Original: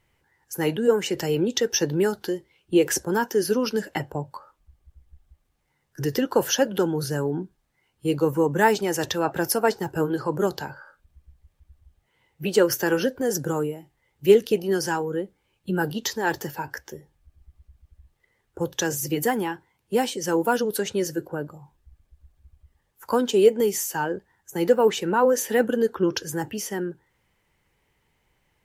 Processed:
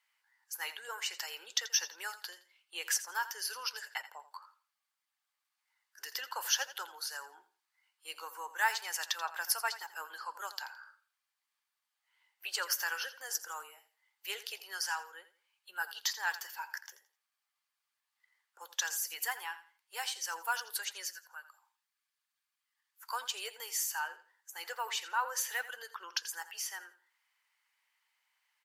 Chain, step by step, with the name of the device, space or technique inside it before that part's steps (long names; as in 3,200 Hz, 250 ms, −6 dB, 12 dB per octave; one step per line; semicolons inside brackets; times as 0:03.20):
0:21.05–0:23.12: high-pass filter 1,100 Hz 12 dB per octave
headphones lying on a table (high-pass filter 1,000 Hz 24 dB per octave; parametric band 4,600 Hz +5 dB 0.26 octaves)
repeating echo 84 ms, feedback 25%, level −14.5 dB
level −6 dB